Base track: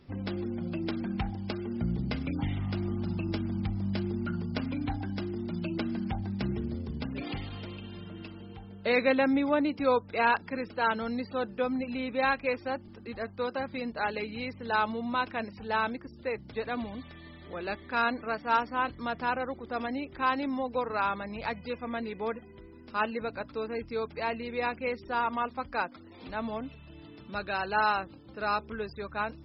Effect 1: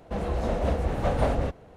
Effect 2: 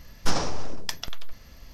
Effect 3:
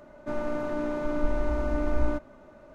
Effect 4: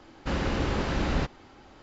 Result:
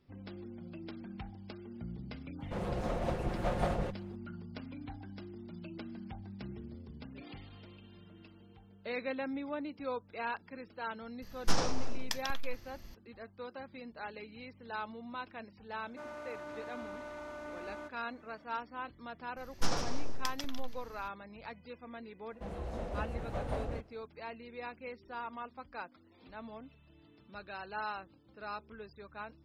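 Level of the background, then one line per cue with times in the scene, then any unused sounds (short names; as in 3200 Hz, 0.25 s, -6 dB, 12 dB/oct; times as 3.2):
base track -12.5 dB
2.4 add 1 -6.5 dB + minimum comb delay 5.6 ms
11.22 add 2 -5.5 dB
15.7 add 3 -6 dB + HPF 1300 Hz 6 dB/oct
19.36 add 2 -8 dB, fades 0.02 s + echo 0.151 s -8 dB
22.3 add 1 -12.5 dB
not used: 4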